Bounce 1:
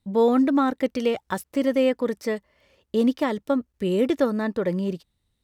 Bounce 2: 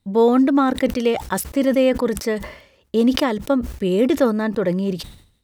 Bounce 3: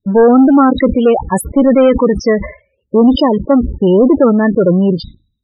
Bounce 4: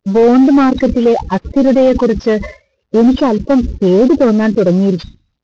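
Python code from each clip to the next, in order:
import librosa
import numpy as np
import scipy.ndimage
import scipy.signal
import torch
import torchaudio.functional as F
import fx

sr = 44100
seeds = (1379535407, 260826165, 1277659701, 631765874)

y1 = fx.sustainer(x, sr, db_per_s=95.0)
y1 = F.gain(torch.from_numpy(y1), 4.0).numpy()
y2 = fx.leveller(y1, sr, passes=3)
y2 = fx.spec_topn(y2, sr, count=16)
y3 = fx.cvsd(y2, sr, bps=32000)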